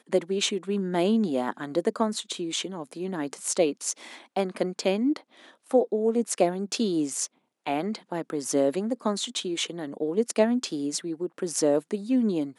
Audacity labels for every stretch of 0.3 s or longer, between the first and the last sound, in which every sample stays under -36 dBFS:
5.170000	5.710000	silence
7.260000	7.670000	silence